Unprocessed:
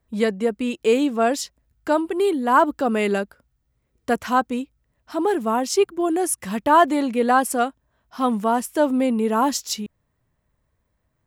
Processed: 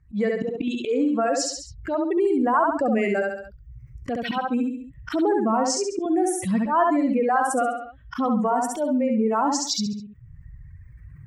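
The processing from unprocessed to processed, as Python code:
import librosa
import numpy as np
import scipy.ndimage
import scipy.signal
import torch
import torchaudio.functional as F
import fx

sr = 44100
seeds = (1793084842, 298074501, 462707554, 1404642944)

p1 = fx.bin_expand(x, sr, power=1.5)
p2 = fx.recorder_agc(p1, sr, target_db=-13.5, rise_db_per_s=45.0, max_gain_db=30)
p3 = fx.highpass(p2, sr, hz=150.0, slope=6)
p4 = fx.dereverb_blind(p3, sr, rt60_s=1.4)
p5 = scipy.signal.sosfilt(scipy.signal.butter(2, 5700.0, 'lowpass', fs=sr, output='sos'), p4)
p6 = fx.auto_swell(p5, sr, attack_ms=126.0)
p7 = fx.env_phaser(p6, sr, low_hz=600.0, high_hz=3600.0, full_db=-22.5)
p8 = p7 + fx.echo_feedback(p7, sr, ms=68, feedback_pct=28, wet_db=-4, dry=0)
p9 = fx.env_flatten(p8, sr, amount_pct=50)
y = p9 * librosa.db_to_amplitude(-4.0)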